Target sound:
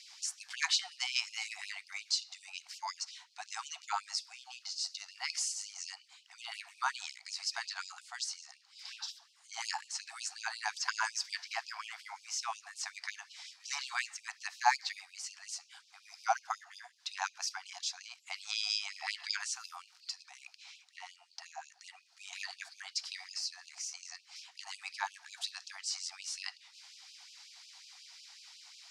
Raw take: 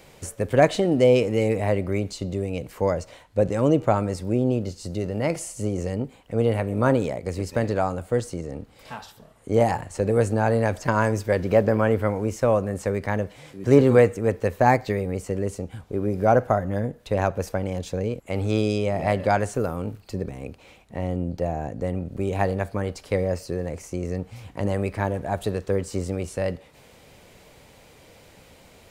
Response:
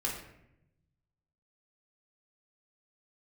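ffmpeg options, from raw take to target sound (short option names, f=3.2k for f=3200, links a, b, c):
-af "lowpass=f=5.1k:t=q:w=2.8,bass=f=250:g=3,treble=f=4k:g=10,afftfilt=real='re*gte(b*sr/1024,680*pow(2500/680,0.5+0.5*sin(2*PI*5.5*pts/sr)))':imag='im*gte(b*sr/1024,680*pow(2500/680,0.5+0.5*sin(2*PI*5.5*pts/sr)))':win_size=1024:overlap=0.75,volume=-6.5dB"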